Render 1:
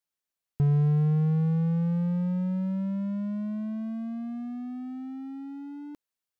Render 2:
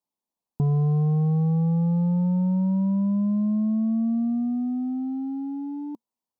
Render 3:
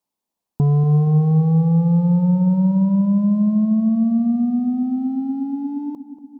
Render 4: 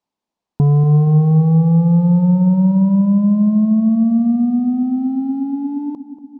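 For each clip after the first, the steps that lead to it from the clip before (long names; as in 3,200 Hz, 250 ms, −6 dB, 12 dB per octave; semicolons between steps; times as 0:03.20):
drawn EQ curve 130 Hz 0 dB, 230 Hz +12 dB, 390 Hz +5 dB, 640 Hz +5 dB, 970 Hz +11 dB, 1,500 Hz −14 dB, 4,300 Hz −3 dB; level −1.5 dB
feedback echo with a low-pass in the loop 237 ms, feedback 67%, low-pass 1,100 Hz, level −13 dB; level +6 dB
high-frequency loss of the air 93 metres; level +3.5 dB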